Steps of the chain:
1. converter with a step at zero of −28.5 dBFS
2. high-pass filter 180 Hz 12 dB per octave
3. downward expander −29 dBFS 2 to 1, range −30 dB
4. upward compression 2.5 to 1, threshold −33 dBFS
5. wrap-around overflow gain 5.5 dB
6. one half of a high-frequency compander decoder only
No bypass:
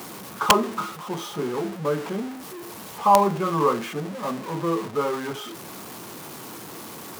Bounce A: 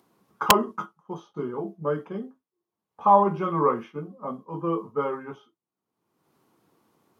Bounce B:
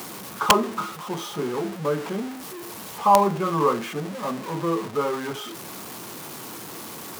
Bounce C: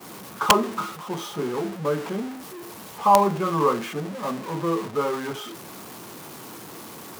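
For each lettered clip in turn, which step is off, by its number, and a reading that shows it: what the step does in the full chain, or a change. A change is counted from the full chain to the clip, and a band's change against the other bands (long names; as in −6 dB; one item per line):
1, distortion level −10 dB
6, change in momentary loudness spread −2 LU
4, change in momentary loudness spread +2 LU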